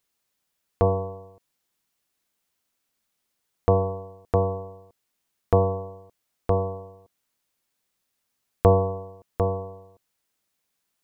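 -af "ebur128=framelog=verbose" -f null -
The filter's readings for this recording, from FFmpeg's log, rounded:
Integrated loudness:
  I:         -25.1 LUFS
  Threshold: -37.0 LUFS
Loudness range:
  LRA:         4.9 LU
  Threshold: -49.1 LUFS
  LRA low:   -32.5 LUFS
  LRA high:  -27.6 LUFS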